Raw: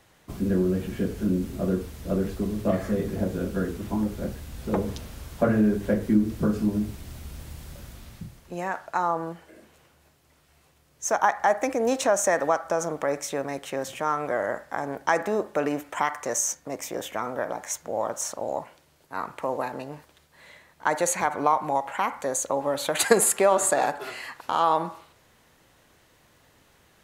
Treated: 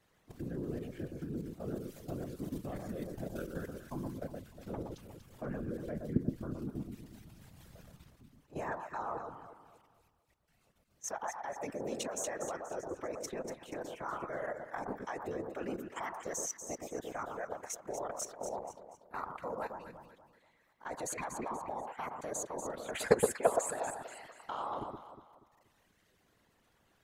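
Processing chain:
reverb reduction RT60 1.8 s
high-shelf EQ 3,500 Hz −2 dB, from 0:01.68 +5.5 dB, from 0:04.18 −3 dB
output level in coarse steps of 17 dB
random phases in short frames
delay that swaps between a low-pass and a high-pass 120 ms, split 1,300 Hz, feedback 60%, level −4 dB
level −5 dB

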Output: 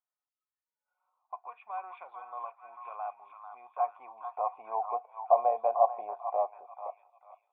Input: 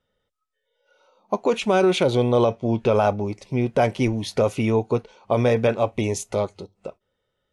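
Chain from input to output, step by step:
formant resonators in series a
high-pass filter sweep 1,700 Hz → 650 Hz, 0:03.15–0:05.07
echo through a band-pass that steps 443 ms, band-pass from 1,200 Hz, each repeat 0.7 octaves, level −5 dB
level +1.5 dB

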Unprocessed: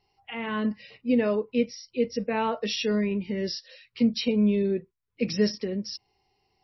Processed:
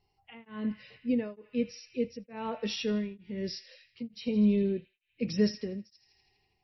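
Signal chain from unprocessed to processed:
low-shelf EQ 240 Hz +8.5 dB
on a send: feedback echo with a band-pass in the loop 81 ms, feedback 83%, band-pass 2,500 Hz, level −14.5 dB
on the sum: tremolo along a rectified sine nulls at 1.1 Hz
level −6 dB

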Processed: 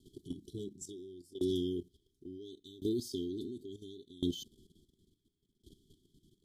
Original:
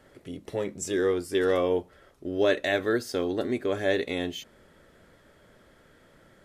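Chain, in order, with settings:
linear-phase brick-wall band-stop 420–3,000 Hz
output level in coarse steps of 12 dB
tremolo with a ramp in dB decaying 0.71 Hz, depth 24 dB
level +6 dB

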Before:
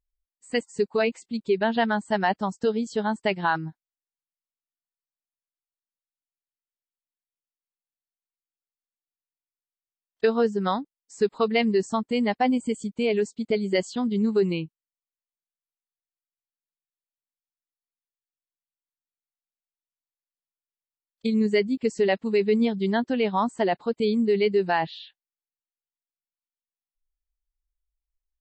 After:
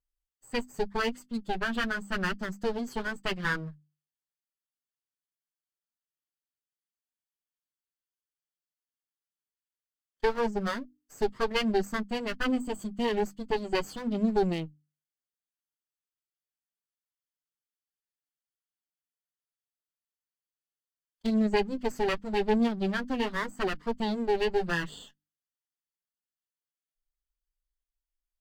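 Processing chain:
lower of the sound and its delayed copy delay 0.64 ms
mains-hum notches 50/100/150/200/250/300 Hz
flanger 0.84 Hz, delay 4 ms, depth 4.1 ms, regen −29%

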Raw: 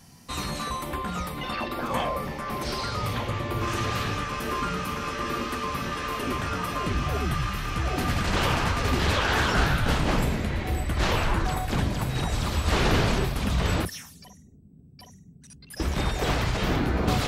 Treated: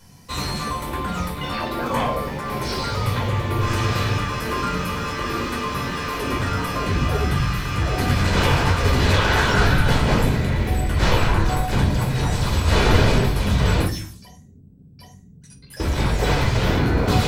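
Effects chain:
in parallel at −11 dB: centre clipping without the shift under −33.5 dBFS
on the sum: convolution reverb RT60 0.45 s, pre-delay 10 ms, DRR 1 dB
level −1 dB

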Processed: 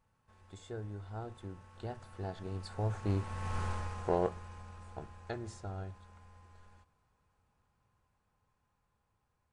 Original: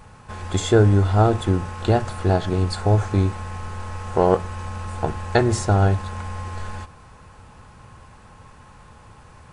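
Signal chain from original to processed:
source passing by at 0:03.62, 9 m/s, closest 1.6 metres
highs frequency-modulated by the lows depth 0.21 ms
level −3.5 dB

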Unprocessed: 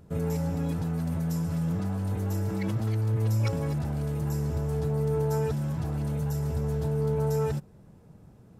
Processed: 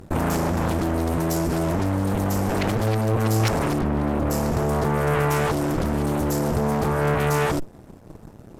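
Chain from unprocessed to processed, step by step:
harmonic generator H 3 −12 dB, 7 −37 dB, 8 −13 dB, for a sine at −17.5 dBFS
in parallel at +2 dB: compressor whose output falls as the input rises −43 dBFS, ratio −1
0:03.81–0:04.31: on the sum: bass and treble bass +1 dB, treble −14 dB
level +6.5 dB

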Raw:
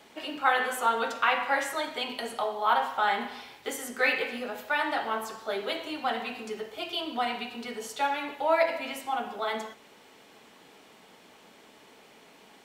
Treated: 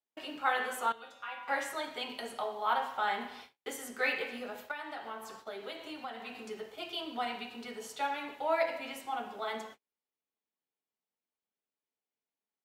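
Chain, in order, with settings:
noise gate −44 dBFS, range −39 dB
0:00.92–0:01.48: tuned comb filter 110 Hz, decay 0.32 s, harmonics odd, mix 90%
0:04.71–0:06.35: downward compressor 5 to 1, threshold −33 dBFS, peak gain reduction 9.5 dB
level −6 dB

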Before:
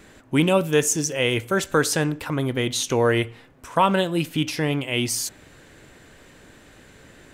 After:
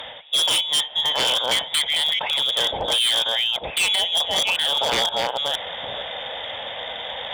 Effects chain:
delay that plays each chunk backwards 463 ms, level −6 dB
treble cut that deepens with the level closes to 1,800 Hz, closed at −17 dBFS
voice inversion scrambler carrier 3,600 Hz
in parallel at +1 dB: downward compressor 6 to 1, threshold −28 dBFS, peak gain reduction 14 dB
on the sum: flat-topped bell 650 Hz +13.5 dB 1.2 octaves
reversed playback
upward compression, threshold −18 dBFS
reversed playback
harmonic generator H 2 −21 dB, 3 −19 dB, 4 −28 dB, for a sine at −1.5 dBFS
wave folding −15.5 dBFS
high-pass filter 46 Hz
level +1.5 dB

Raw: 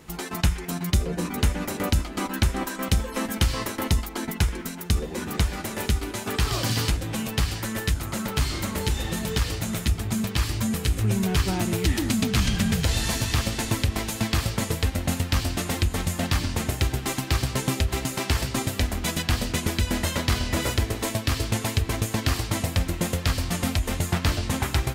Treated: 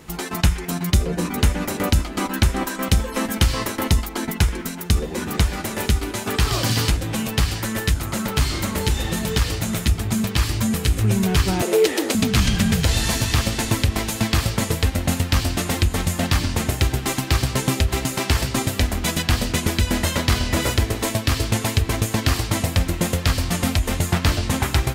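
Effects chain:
0:11.62–0:12.15: high-pass with resonance 460 Hz, resonance Q 5.3
level +4.5 dB

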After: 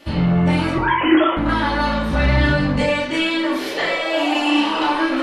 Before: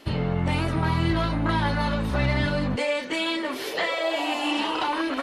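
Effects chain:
0:00.75–0:01.37: three sine waves on the formant tracks
convolution reverb RT60 0.65 s, pre-delay 3 ms, DRR −5 dB

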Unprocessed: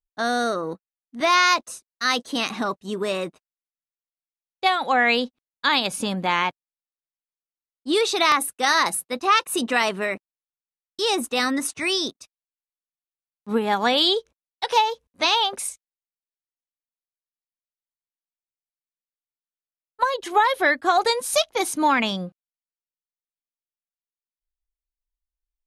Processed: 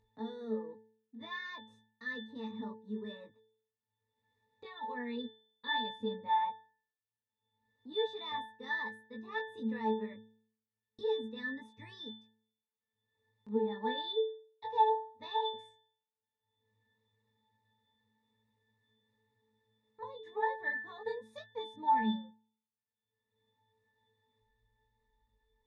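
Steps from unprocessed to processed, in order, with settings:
resonances in every octave A, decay 0.44 s
upward compression, threshold −49 dBFS
chorus effect 0.1 Hz, delay 18.5 ms, depth 2.1 ms
level +6 dB

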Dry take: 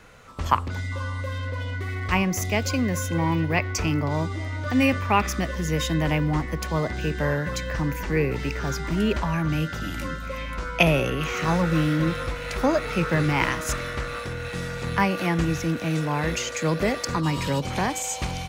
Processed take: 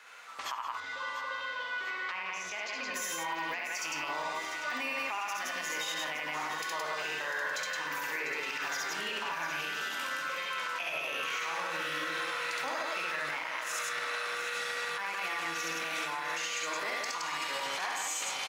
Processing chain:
high-pass filter 1,100 Hz 12 dB per octave
high-shelf EQ 5,800 Hz −4.5 dB
loudspeakers that aren't time-aligned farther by 23 metres −1 dB, 58 metres −3 dB
convolution reverb, pre-delay 11 ms, DRR 6.5 dB
downward compressor 10 to 1, threshold −28 dBFS, peak gain reduction 13.5 dB
brickwall limiter −26 dBFS, peak gain reduction 10.5 dB
0:00.80–0:02.94: high-frequency loss of the air 110 metres
feedback echo at a low word length 697 ms, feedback 55%, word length 11 bits, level −11 dB

